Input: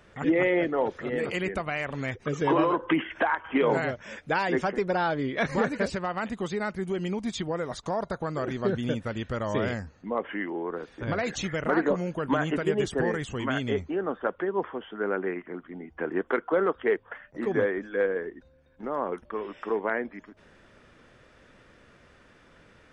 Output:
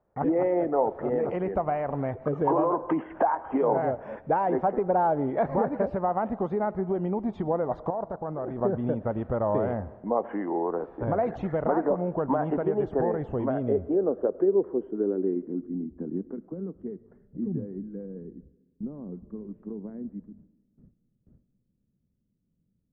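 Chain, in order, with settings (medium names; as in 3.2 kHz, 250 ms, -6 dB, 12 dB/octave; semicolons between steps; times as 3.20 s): 7.90–8.61 s: level held to a coarse grid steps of 19 dB; gate with hold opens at -44 dBFS; compression 2.5:1, threshold -29 dBFS, peak gain reduction 7.5 dB; low-pass sweep 800 Hz -> 190 Hz, 12.96–16.49 s; on a send: reverberation RT60 1.2 s, pre-delay 60 ms, DRR 18.5 dB; on the sum: trim +3 dB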